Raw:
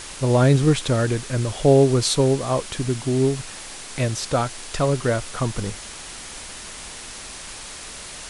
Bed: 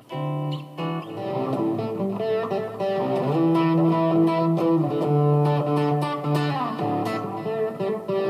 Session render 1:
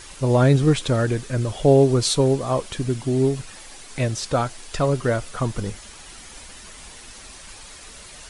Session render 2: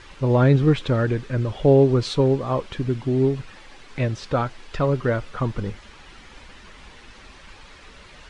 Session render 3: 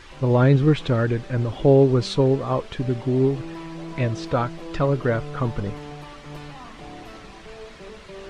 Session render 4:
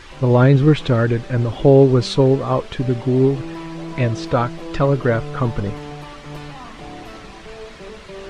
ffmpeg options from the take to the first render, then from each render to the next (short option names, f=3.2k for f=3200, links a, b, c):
-af "afftdn=nr=8:nf=-37"
-af "lowpass=3.1k,equalizer=f=680:w=5.7:g=-5"
-filter_complex "[1:a]volume=-16dB[a];[0:a][a]amix=inputs=2:normalize=0"
-af "volume=4.5dB,alimiter=limit=-3dB:level=0:latency=1"